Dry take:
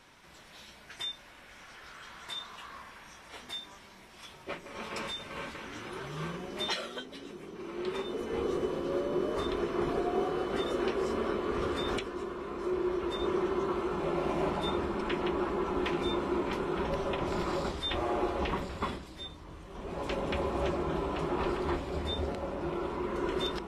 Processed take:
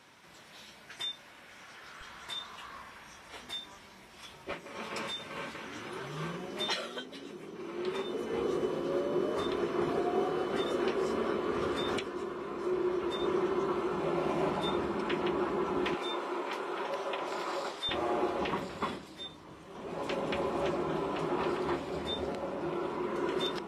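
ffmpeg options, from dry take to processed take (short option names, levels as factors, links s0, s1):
-af "asetnsamples=n=441:p=0,asendcmd='2.01 highpass f 48;4.51 highpass f 110;15.94 highpass f 470;17.89 highpass f 150',highpass=100"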